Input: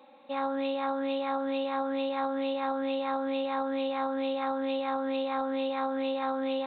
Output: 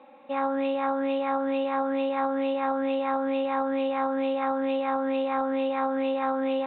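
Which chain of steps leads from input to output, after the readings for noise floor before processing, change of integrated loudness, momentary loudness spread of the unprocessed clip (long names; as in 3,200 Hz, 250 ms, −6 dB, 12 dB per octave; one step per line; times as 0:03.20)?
−34 dBFS, +4.0 dB, 0 LU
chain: low-pass filter 2,900 Hz 24 dB per octave
level +4 dB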